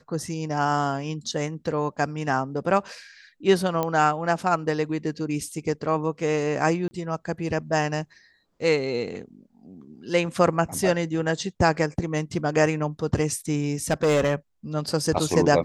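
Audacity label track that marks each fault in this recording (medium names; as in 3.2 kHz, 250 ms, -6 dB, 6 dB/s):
3.830000	3.830000	pop -12 dBFS
6.880000	6.910000	dropout 30 ms
13.900000	14.340000	clipped -16.5 dBFS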